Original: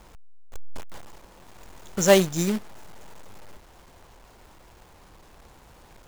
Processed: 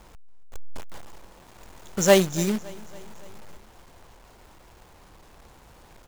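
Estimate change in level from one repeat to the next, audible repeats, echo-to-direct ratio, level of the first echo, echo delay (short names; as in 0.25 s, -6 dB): -4.5 dB, 3, -20.0 dB, -22.0 dB, 0.281 s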